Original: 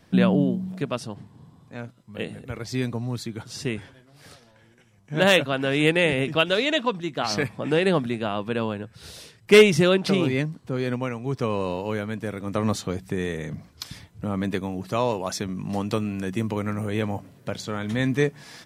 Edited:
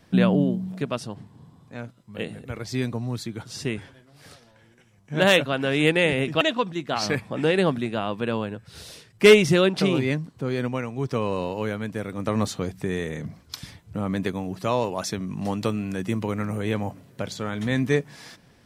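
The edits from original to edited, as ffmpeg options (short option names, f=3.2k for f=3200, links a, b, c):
-filter_complex "[0:a]asplit=2[a][b];[a]atrim=end=6.412[c];[b]atrim=start=6.688[d];[c][d]acrossfade=d=0.004:c1=hsin:c2=hsin"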